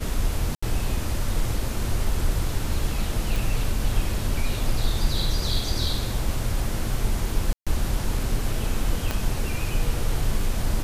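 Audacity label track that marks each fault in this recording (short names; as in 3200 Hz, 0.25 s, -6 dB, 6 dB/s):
0.550000	0.620000	gap 75 ms
3.360000	3.360000	pop
7.530000	7.670000	gap 0.136 s
9.110000	9.110000	pop -10 dBFS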